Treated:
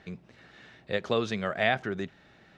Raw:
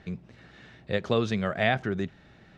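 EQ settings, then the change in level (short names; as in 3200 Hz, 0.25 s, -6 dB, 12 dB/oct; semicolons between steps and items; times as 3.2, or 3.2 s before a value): low shelf 210 Hz -9.5 dB; 0.0 dB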